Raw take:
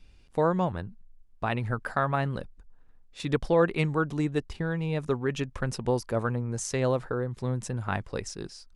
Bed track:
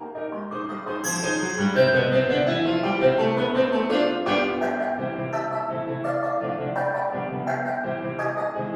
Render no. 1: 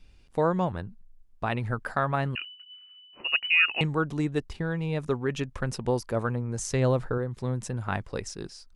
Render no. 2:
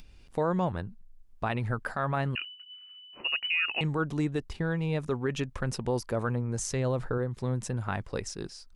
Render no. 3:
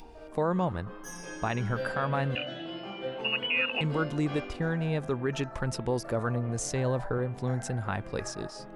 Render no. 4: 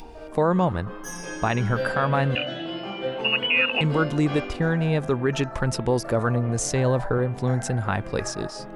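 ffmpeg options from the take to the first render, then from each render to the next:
-filter_complex "[0:a]asettb=1/sr,asplit=3[s0][s1][s2];[s0]atrim=end=2.354[s3];[s1]atrim=start=2.35:end=3.81,asetpts=PTS-STARTPTS,afade=t=in:d=0.004:c=qsin,afade=t=out:st=1.456:d=0.004:c=qsin,lowpass=f=2600:t=q:w=0.5098,lowpass=f=2600:t=q:w=0.6013,lowpass=f=2600:t=q:w=0.9,lowpass=f=2600:t=q:w=2.563,afreqshift=-3000[s4];[s2]atrim=start=3.806[s5];[s3][s4]acrossfade=d=0.004:c1=hsin:c2=qsin[s6];[s6][s5]acrossfade=d=0.004:c1=qsin:c2=hsin,asettb=1/sr,asplit=3[s7][s8][s9];[s7]atrim=end=6.584[s10];[s8]atrim=start=6.58:end=7.18,asetpts=PTS-STARTPTS,afade=t=in:d=0.004:c=qsin,afade=t=out:st=0.596:d=0.004:c=qsin,lowshelf=f=160:g=8.5[s11];[s9]atrim=start=7.176[s12];[s10][s11]acrossfade=d=0.004:c1=hsin:c2=qsin[s13];[s13][s12]acrossfade=d=0.004:c1=qsin:c2=hsin"
-af "alimiter=limit=0.112:level=0:latency=1:release=43,acompressor=mode=upward:threshold=0.00501:ratio=2.5"
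-filter_complex "[1:a]volume=0.141[s0];[0:a][s0]amix=inputs=2:normalize=0"
-af "volume=2.24"

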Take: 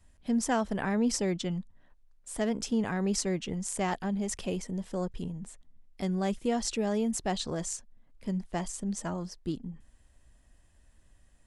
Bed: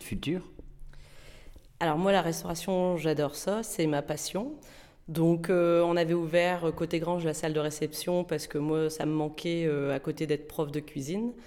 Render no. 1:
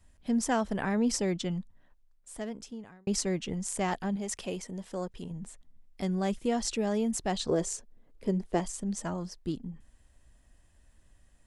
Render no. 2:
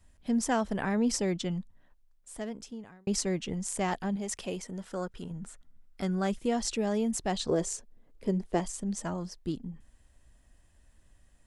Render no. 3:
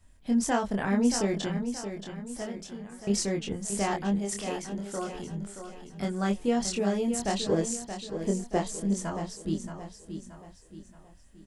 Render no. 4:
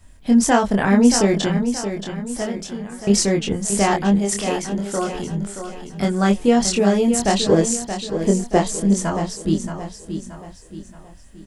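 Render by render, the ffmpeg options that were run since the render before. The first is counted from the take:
-filter_complex "[0:a]asettb=1/sr,asplit=3[s0][s1][s2];[s0]atrim=end=4.164[s3];[s1]atrim=start=4.16:end=5.31,asetpts=PTS-STARTPTS,afade=t=in:d=0.004:c=qsin,afade=t=out:st=1.146:d=0.004:c=qsin,lowshelf=f=210:g=-9[s4];[s2]atrim=start=5.306[s5];[s3][s4]acrossfade=d=0.004:c1=hsin:c2=qsin[s6];[s6][s5]acrossfade=d=0.004:c1=qsin:c2=hsin,asettb=1/sr,asplit=3[s7][s8][s9];[s7]atrim=end=7.494[s10];[s8]atrim=start=7.49:end=8.6,asetpts=PTS-STARTPTS,afade=t=in:d=0.004:c=qsin,afade=t=out:st=1.106:d=0.004:c=qsin,equalizer=f=420:w=1.5:g=12[s11];[s9]atrim=start=8.596[s12];[s10][s11]acrossfade=d=0.004:c1=hsin:c2=qsin[s13];[s13][s12]acrossfade=d=0.004:c1=qsin:c2=hsin,asplit=2[s14][s15];[s14]atrim=end=3.07,asetpts=PTS-STARTPTS,afade=t=out:st=1.59:d=1.48[s16];[s15]atrim=start=3.07,asetpts=PTS-STARTPTS,afade=t=in:d=0.004:c=hsin[s17];[s16][s17]concat=n=2:v=0:a=1"
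-filter_complex "[0:a]asettb=1/sr,asplit=3[s0][s1][s2];[s0]atrim=end=4.684[s3];[s1]atrim=start=4.68:end=6.27,asetpts=PTS-STARTPTS,afade=t=in:d=0.004:c=qsin,afade=t=out:st=1.586:d=0.004:c=qsin,equalizer=f=1400:t=o:w=0.31:g=11.5[s4];[s2]atrim=start=6.266[s5];[s3][s4]acrossfade=d=0.004:c1=hsin:c2=qsin[s6];[s6][s5]acrossfade=d=0.004:c1=qsin:c2=hsin"
-filter_complex "[0:a]asplit=2[s0][s1];[s1]adelay=25,volume=0.708[s2];[s0][s2]amix=inputs=2:normalize=0,aecho=1:1:626|1252|1878|2504|3130:0.355|0.149|0.0626|0.0263|0.011"
-af "volume=3.55"

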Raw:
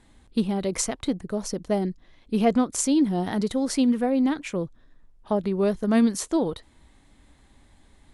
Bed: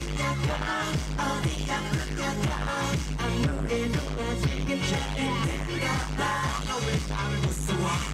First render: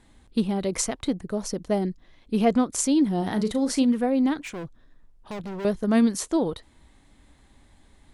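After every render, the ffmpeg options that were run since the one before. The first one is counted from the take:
-filter_complex "[0:a]asettb=1/sr,asplit=3[s0][s1][s2];[s0]atrim=end=3.184[s3];[s1]atrim=start=3.18:end=3.85,asetpts=PTS-STARTPTS,afade=t=in:d=0.004:c=qsin,afade=t=out:st=0.666:d=0.004:c=qsin,asplit=2[s4][s5];[s5]adelay=37,volume=0.299[s6];[s4][s6]amix=inputs=2:normalize=0,atrim=end_sample=29547[s7];[s2]atrim=start=3.846[s8];[s3][s7]acrossfade=d=0.004:c1=hsin:c2=qsin[s9];[s9][s8]acrossfade=d=0.004:c1=qsin:c2=hsin,asettb=1/sr,asplit=3[s10][s11][s12];[s10]atrim=end=4.434[s13];[s11]atrim=start=4.43:end=5.65,asetpts=PTS-STARTPTS,afade=t=in:d=0.004:c=qsin,afade=t=out:st=1.216:d=0.004:c=qsin,volume=39.8,asoftclip=hard,volume=0.0251[s14];[s12]atrim=start=5.646[s15];[s13][s14]acrossfade=d=0.004:c1=hsin:c2=qsin[s16];[s16][s15]acrossfade=d=0.004:c1=qsin:c2=hsin"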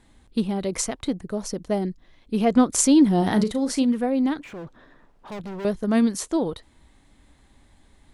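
-filter_complex "[0:a]asettb=1/sr,asplit=3[s0][s1][s2];[s0]atrim=end=2.574[s3];[s1]atrim=start=2.57:end=3.44,asetpts=PTS-STARTPTS,afade=t=in:d=0.004:c=qsin,afade=t=out:st=0.866:d=0.004:c=qsin,acontrast=40[s4];[s2]atrim=start=3.436[s5];[s3][s4]acrossfade=d=0.004:c1=hsin:c2=qsin[s6];[s6][s5]acrossfade=d=0.004:c1=qsin:c2=hsin,asettb=1/sr,asplit=3[s7][s8][s9];[s7]atrim=end=4.444[s10];[s8]atrim=start=4.44:end=5.32,asetpts=PTS-STARTPTS,afade=t=in:d=0.004:c=qsin,afade=t=out:st=0.876:d=0.004:c=qsin,asplit=2[s11][s12];[s12]highpass=f=720:p=1,volume=20,asoftclip=type=tanh:threshold=0.0251[s13];[s11][s13]amix=inputs=2:normalize=0,lowpass=f=1100:p=1,volume=0.501[s14];[s9]atrim=start=5.316[s15];[s10][s14]acrossfade=d=0.004:c1=hsin:c2=qsin[s16];[s16][s15]acrossfade=d=0.004:c1=qsin:c2=hsin"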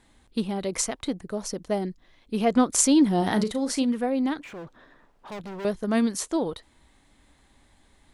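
-af "lowshelf=f=340:g=-5.5"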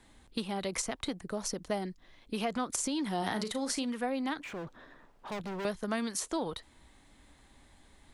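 -filter_complex "[0:a]alimiter=limit=0.158:level=0:latency=1:release=59,acrossover=split=270|720[s0][s1][s2];[s0]acompressor=threshold=0.01:ratio=4[s3];[s1]acompressor=threshold=0.00891:ratio=4[s4];[s2]acompressor=threshold=0.0251:ratio=4[s5];[s3][s4][s5]amix=inputs=3:normalize=0"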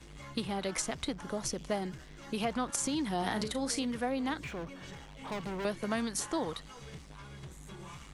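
-filter_complex "[1:a]volume=0.0944[s0];[0:a][s0]amix=inputs=2:normalize=0"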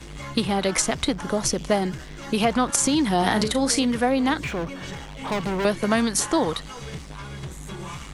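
-af "volume=3.98"

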